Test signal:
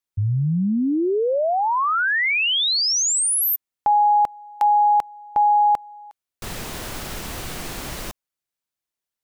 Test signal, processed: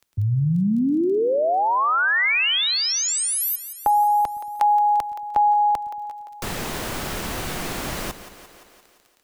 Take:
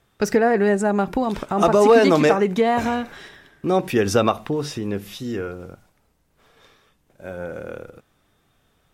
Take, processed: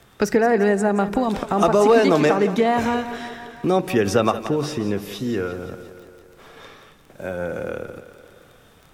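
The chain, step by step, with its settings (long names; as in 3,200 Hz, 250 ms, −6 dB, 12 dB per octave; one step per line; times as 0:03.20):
surface crackle 13 per second −47 dBFS
echo with a time of its own for lows and highs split 320 Hz, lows 113 ms, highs 173 ms, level −14 dB
multiband upward and downward compressor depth 40%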